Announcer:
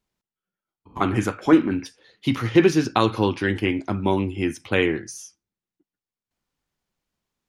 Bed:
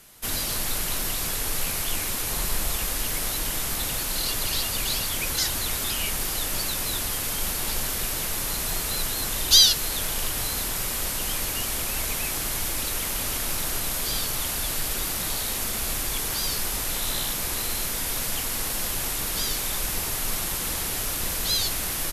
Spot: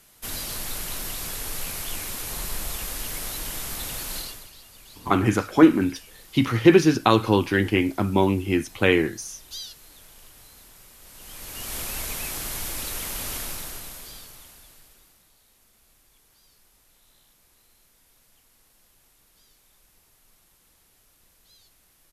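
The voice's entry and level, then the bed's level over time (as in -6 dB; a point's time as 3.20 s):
4.10 s, +1.5 dB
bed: 4.17 s -4.5 dB
4.53 s -22 dB
10.99 s -22 dB
11.76 s -3.5 dB
13.38 s -3.5 dB
15.31 s -33 dB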